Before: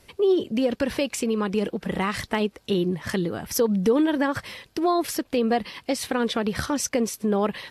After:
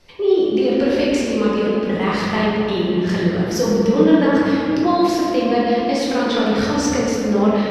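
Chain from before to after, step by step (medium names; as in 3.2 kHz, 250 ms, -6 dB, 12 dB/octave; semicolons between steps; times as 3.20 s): resonant high shelf 7.3 kHz -9.5 dB, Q 1.5; 6.31–6.90 s: hard clipper -15.5 dBFS, distortion -39 dB; simulated room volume 130 m³, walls hard, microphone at 0.9 m; trim -1.5 dB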